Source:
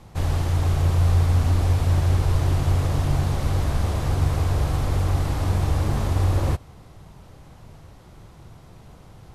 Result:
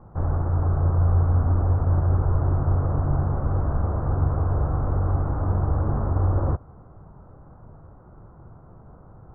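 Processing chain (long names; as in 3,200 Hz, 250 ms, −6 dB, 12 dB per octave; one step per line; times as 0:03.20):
elliptic low-pass filter 1,400 Hz, stop band 60 dB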